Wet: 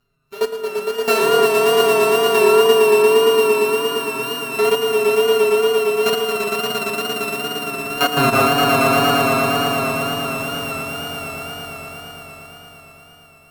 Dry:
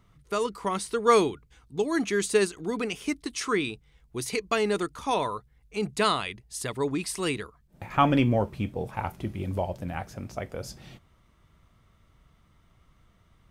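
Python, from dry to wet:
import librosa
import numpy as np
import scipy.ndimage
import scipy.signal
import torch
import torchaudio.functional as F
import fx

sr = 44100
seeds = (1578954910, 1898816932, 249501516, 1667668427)

y = np.r_[np.sort(x[:len(x) // 32 * 32].reshape(-1, 32), axis=1).ravel(), x[len(x) // 32 * 32:]]
y = fx.hum_notches(y, sr, base_hz=50, count=3)
y = fx.rev_fdn(y, sr, rt60_s=2.5, lf_ratio=0.7, hf_ratio=0.35, size_ms=14.0, drr_db=-6.5)
y = fx.level_steps(y, sr, step_db=17)
y = fx.peak_eq(y, sr, hz=100.0, db=-9.0, octaves=0.83)
y = y + 0.67 * np.pad(y, (int(7.2 * sr / 1000.0), 0))[:len(y)]
y = fx.echo_swell(y, sr, ms=115, loudest=5, wet_db=-4.5)
y = fx.wow_flutter(y, sr, seeds[0], rate_hz=2.1, depth_cents=46.0)
y = y * librosa.db_to_amplitude(-1.0)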